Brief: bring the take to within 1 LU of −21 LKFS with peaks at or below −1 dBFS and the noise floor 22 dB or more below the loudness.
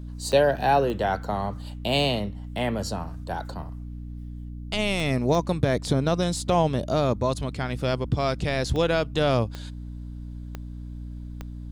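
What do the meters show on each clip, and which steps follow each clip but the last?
number of clicks 8; mains hum 60 Hz; hum harmonics up to 300 Hz; level of the hum −34 dBFS; integrated loudness −25.0 LKFS; sample peak −7.0 dBFS; target loudness −21.0 LKFS
→ click removal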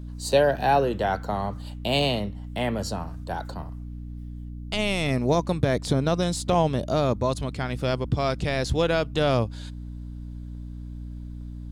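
number of clicks 1; mains hum 60 Hz; hum harmonics up to 300 Hz; level of the hum −34 dBFS
→ mains-hum notches 60/120/180/240/300 Hz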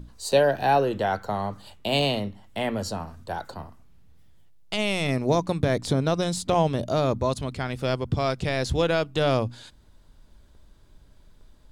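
mains hum none found; integrated loudness −25.5 LKFS; sample peak −7.5 dBFS; target loudness −21.0 LKFS
→ level +4.5 dB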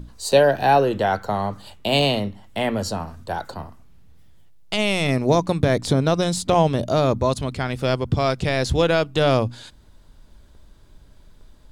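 integrated loudness −21.0 LKFS; sample peak −3.0 dBFS; background noise floor −50 dBFS

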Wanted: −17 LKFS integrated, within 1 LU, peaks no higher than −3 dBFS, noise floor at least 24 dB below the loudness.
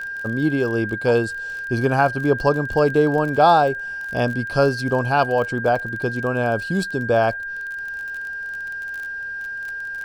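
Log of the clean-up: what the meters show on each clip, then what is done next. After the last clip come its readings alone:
crackle rate 33 per second; interfering tone 1,600 Hz; level of the tone −27 dBFS; integrated loudness −21.0 LKFS; sample peak −4.0 dBFS; target loudness −17.0 LKFS
→ click removal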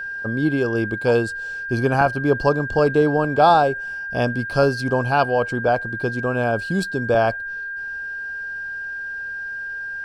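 crackle rate 0 per second; interfering tone 1,600 Hz; level of the tone −27 dBFS
→ notch filter 1,600 Hz, Q 30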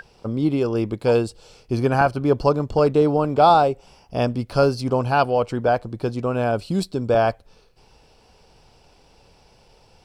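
interfering tone none found; integrated loudness −20.5 LKFS; sample peak −3.5 dBFS; target loudness −17.0 LKFS
→ level +3.5 dB
brickwall limiter −3 dBFS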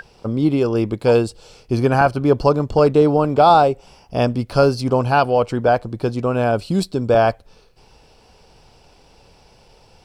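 integrated loudness −17.5 LKFS; sample peak −3.0 dBFS; background noise floor −52 dBFS

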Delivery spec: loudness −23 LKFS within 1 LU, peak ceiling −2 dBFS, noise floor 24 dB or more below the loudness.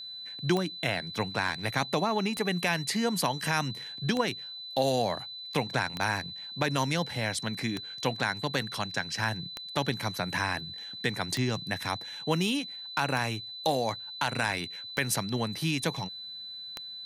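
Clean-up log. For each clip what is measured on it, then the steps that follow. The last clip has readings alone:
number of clicks 10; interfering tone 4,000 Hz; level of the tone −39 dBFS; integrated loudness −30.5 LKFS; sample peak −12.5 dBFS; target loudness −23.0 LKFS
→ click removal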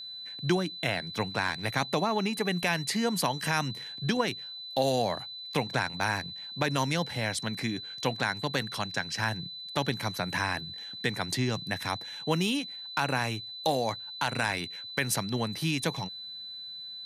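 number of clicks 0; interfering tone 4,000 Hz; level of the tone −39 dBFS
→ notch filter 4,000 Hz, Q 30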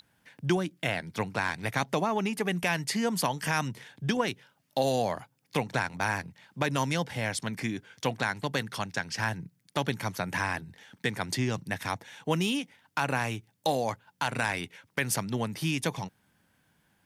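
interfering tone none found; integrated loudness −31.0 LKFS; sample peak −13.0 dBFS; target loudness −23.0 LKFS
→ level +8 dB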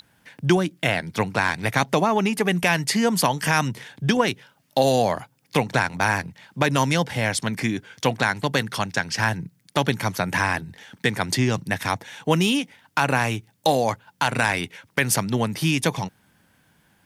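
integrated loudness −23.0 LKFS; sample peak −5.0 dBFS; background noise floor −63 dBFS

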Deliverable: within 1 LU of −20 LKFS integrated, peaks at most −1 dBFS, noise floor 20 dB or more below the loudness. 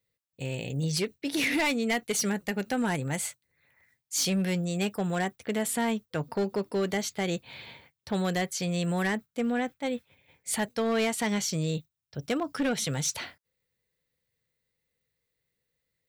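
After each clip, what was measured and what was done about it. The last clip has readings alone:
share of clipped samples 1.4%; peaks flattened at −22.5 dBFS; integrated loudness −29.5 LKFS; sample peak −22.5 dBFS; target loudness −20.0 LKFS
→ clipped peaks rebuilt −22.5 dBFS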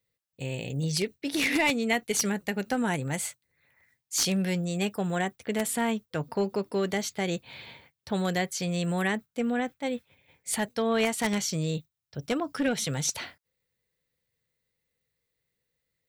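share of clipped samples 0.0%; integrated loudness −29.0 LKFS; sample peak −13.5 dBFS; target loudness −20.0 LKFS
→ level +9 dB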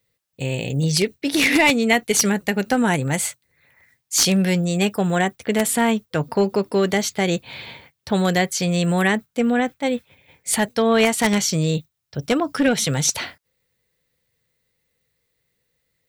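integrated loudness −20.0 LKFS; sample peak −4.5 dBFS; background noise floor −74 dBFS

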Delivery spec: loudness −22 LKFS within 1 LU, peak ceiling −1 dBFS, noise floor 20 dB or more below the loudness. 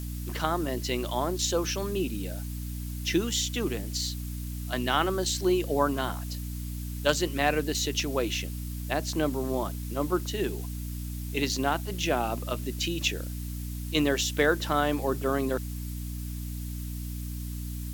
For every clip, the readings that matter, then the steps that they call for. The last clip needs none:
mains hum 60 Hz; hum harmonics up to 300 Hz; level of the hum −32 dBFS; background noise floor −35 dBFS; target noise floor −50 dBFS; integrated loudness −29.5 LKFS; sample peak −10.0 dBFS; target loudness −22.0 LKFS
→ mains-hum notches 60/120/180/240/300 Hz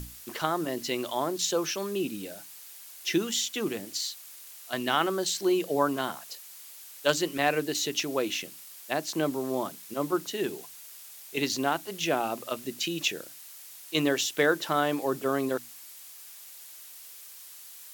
mains hum none found; background noise floor −47 dBFS; target noise floor −50 dBFS
→ broadband denoise 6 dB, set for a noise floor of −47 dBFS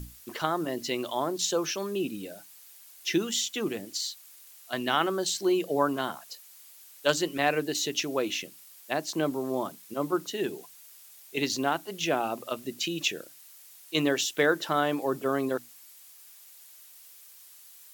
background noise floor −52 dBFS; integrated loudness −29.5 LKFS; sample peak −10.5 dBFS; target loudness −22.0 LKFS
→ level +7.5 dB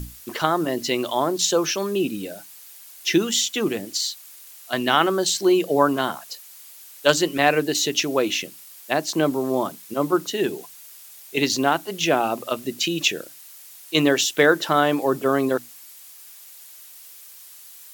integrated loudness −22.0 LKFS; sample peak −3.0 dBFS; background noise floor −45 dBFS

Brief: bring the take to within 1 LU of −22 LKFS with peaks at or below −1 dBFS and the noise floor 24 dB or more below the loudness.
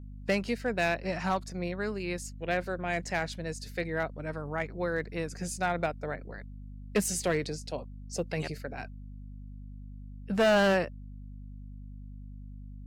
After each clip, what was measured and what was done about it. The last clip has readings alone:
share of clipped samples 0.8%; peaks flattened at −20.0 dBFS; mains hum 50 Hz; hum harmonics up to 250 Hz; level of the hum −41 dBFS; integrated loudness −31.5 LKFS; sample peak −20.0 dBFS; target loudness −22.0 LKFS
→ clipped peaks rebuilt −20 dBFS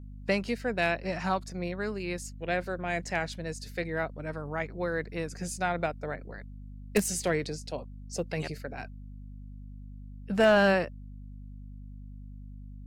share of clipped samples 0.0%; mains hum 50 Hz; hum harmonics up to 250 Hz; level of the hum −41 dBFS
→ mains-hum notches 50/100/150/200/250 Hz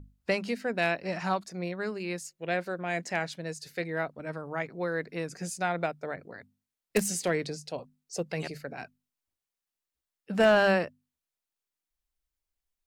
mains hum none found; integrated loudness −31.0 LKFS; sample peak −10.5 dBFS; target loudness −22.0 LKFS
→ level +9 dB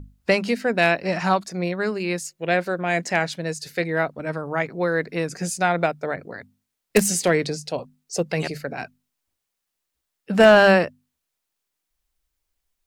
integrated loudness −22.0 LKFS; sample peak −1.5 dBFS; background noise floor −81 dBFS

